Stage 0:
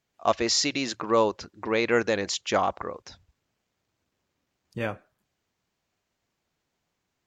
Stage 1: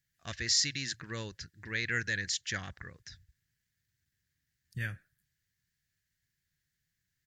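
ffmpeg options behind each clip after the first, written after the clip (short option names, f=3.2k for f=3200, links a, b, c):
-af "firequalizer=gain_entry='entry(150,0);entry(210,-13);entry(390,-20);entry(650,-27);entry(1100,-25);entry(1700,3);entry(2400,-9);entry(4500,-3);entry(6700,-3);entry(10000,4)':delay=0.05:min_phase=1"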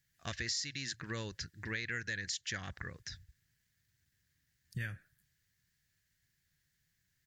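-af "acompressor=threshold=-41dB:ratio=4,volume=4dB"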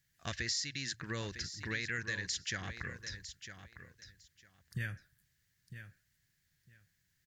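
-af "aecho=1:1:954|1908:0.282|0.0507,volume=1dB"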